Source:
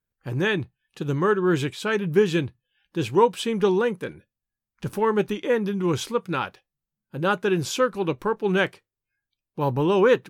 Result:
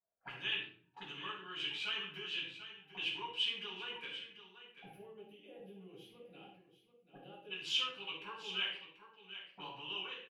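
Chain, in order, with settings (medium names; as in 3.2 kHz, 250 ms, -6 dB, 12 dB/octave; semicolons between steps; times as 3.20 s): fade out at the end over 0.86 s; compression, threshold -26 dBFS, peak gain reduction 13.5 dB; auto-wah 640–2900 Hz, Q 9.8, up, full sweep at -30 dBFS; time-frequency box 4.78–7.51 s, 830–9600 Hz -23 dB; delay 738 ms -12 dB; simulated room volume 560 m³, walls furnished, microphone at 7.9 m; trim +2 dB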